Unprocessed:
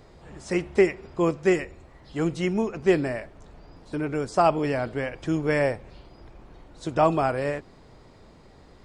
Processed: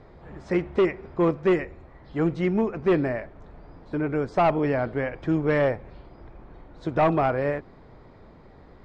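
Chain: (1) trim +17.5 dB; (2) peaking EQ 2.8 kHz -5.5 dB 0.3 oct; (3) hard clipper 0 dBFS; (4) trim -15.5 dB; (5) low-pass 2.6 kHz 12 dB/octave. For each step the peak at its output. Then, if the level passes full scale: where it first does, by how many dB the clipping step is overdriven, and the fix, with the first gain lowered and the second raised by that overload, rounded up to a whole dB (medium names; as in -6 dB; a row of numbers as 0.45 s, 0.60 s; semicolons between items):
+9.5 dBFS, +9.5 dBFS, 0.0 dBFS, -15.5 dBFS, -15.0 dBFS; step 1, 9.5 dB; step 1 +7.5 dB, step 4 -5.5 dB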